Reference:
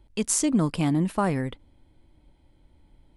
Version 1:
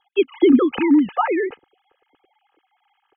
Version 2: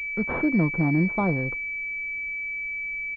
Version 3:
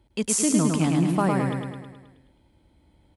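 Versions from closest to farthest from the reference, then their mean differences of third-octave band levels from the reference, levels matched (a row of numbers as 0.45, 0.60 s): 3, 2, 1; 6.5, 9.0, 13.5 dB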